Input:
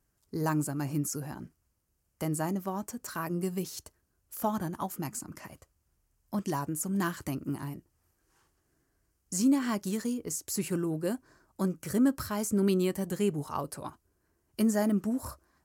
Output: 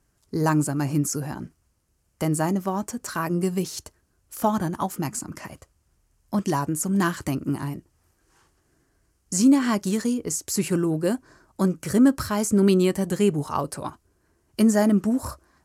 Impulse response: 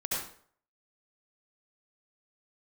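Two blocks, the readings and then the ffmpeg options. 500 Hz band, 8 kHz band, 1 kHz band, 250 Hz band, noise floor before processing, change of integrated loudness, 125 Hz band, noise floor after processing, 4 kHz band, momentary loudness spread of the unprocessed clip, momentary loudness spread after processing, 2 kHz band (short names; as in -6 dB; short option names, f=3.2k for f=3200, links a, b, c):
+8.0 dB, +7.0 dB, +8.0 dB, +8.0 dB, -76 dBFS, +8.0 dB, +8.0 dB, -69 dBFS, +8.0 dB, 15 LU, 15 LU, +8.0 dB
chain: -af "lowpass=11k,volume=8dB"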